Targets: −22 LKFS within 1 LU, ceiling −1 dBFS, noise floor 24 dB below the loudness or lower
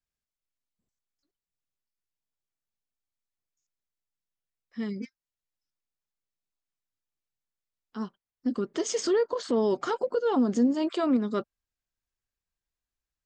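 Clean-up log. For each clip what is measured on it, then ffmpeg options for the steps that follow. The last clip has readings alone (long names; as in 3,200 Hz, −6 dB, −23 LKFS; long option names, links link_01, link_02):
integrated loudness −28.0 LKFS; sample peak −15.0 dBFS; target loudness −22.0 LKFS
→ -af "volume=6dB"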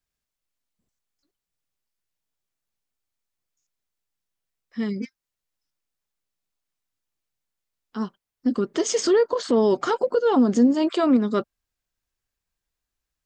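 integrated loudness −22.0 LKFS; sample peak −9.0 dBFS; background noise floor −86 dBFS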